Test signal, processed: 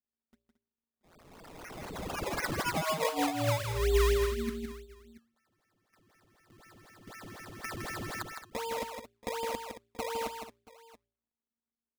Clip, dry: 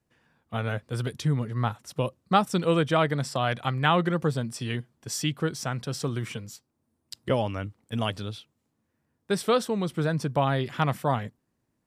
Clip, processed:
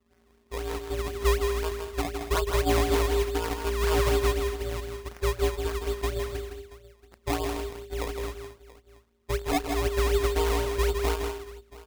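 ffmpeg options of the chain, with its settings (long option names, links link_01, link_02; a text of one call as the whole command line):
ffmpeg -i in.wav -filter_complex "[0:a]lowpass=frequency=1800:poles=1,aemphasis=mode=reproduction:type=bsi,bandreject=frequency=62.48:width_type=h:width=4,bandreject=frequency=124.96:width_type=h:width=4,bandreject=frequency=187.44:width_type=h:width=4,bandreject=frequency=249.92:width_type=h:width=4,bandreject=frequency=312.4:width_type=h:width=4,bandreject=frequency=374.88:width_type=h:width=4,bandreject=frequency=437.36:width_type=h:width=4,asplit=2[link_01][link_02];[link_02]acompressor=threshold=-31dB:ratio=6,volume=0dB[link_03];[link_01][link_03]amix=inputs=2:normalize=0,afftfilt=real='hypot(re,im)*cos(PI*b)':imag='0':win_size=1024:overlap=0.75,aeval=exprs='val(0)*sin(2*PI*230*n/s)':channel_layout=same,acrusher=samples=21:mix=1:aa=0.000001:lfo=1:lforange=21:lforate=4,asoftclip=type=tanh:threshold=-14dB,aecho=1:1:161|223|680:0.501|0.224|0.106" out.wav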